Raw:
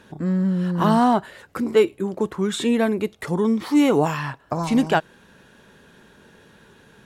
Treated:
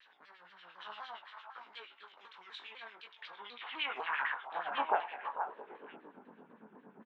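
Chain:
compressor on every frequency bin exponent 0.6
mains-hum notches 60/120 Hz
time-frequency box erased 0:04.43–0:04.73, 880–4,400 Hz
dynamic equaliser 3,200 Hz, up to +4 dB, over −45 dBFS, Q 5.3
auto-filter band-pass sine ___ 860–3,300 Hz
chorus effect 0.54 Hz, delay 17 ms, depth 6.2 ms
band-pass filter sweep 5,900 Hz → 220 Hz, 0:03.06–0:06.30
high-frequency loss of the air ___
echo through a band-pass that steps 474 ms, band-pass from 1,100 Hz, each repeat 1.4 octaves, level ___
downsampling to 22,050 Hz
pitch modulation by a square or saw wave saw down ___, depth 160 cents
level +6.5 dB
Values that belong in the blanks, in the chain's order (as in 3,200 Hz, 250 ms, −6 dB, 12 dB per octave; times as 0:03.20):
8.7 Hz, 400 metres, −4.5 dB, 4 Hz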